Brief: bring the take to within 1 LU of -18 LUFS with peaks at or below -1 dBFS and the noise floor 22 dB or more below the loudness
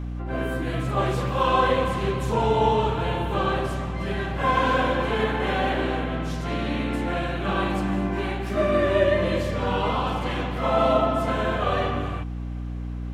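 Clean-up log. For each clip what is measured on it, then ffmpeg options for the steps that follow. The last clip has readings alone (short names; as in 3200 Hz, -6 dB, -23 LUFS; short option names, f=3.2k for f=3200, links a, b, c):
hum 60 Hz; harmonics up to 300 Hz; hum level -28 dBFS; loudness -24.5 LUFS; peak -7.5 dBFS; loudness target -18.0 LUFS
-> -af "bandreject=f=60:t=h:w=4,bandreject=f=120:t=h:w=4,bandreject=f=180:t=h:w=4,bandreject=f=240:t=h:w=4,bandreject=f=300:t=h:w=4"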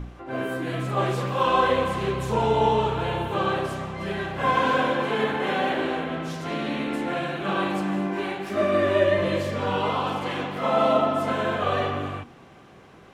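hum none; loudness -25.0 LUFS; peak -8.5 dBFS; loudness target -18.0 LUFS
-> -af "volume=7dB"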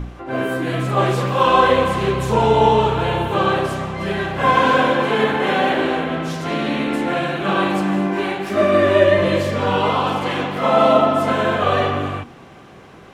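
loudness -18.0 LUFS; peak -1.5 dBFS; noise floor -42 dBFS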